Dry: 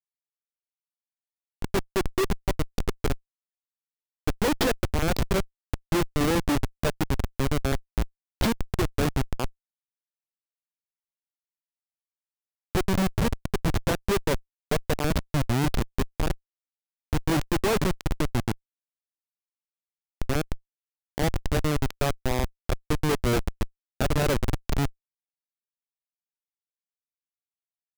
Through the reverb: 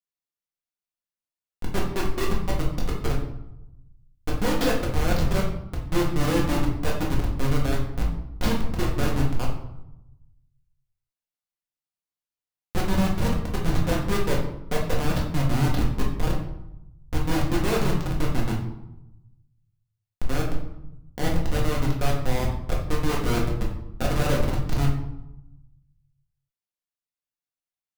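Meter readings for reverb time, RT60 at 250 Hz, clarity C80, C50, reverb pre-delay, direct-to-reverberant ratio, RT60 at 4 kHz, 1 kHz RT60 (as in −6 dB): 0.90 s, 1.2 s, 8.0 dB, 4.5 dB, 4 ms, −3.5 dB, 0.55 s, 0.85 s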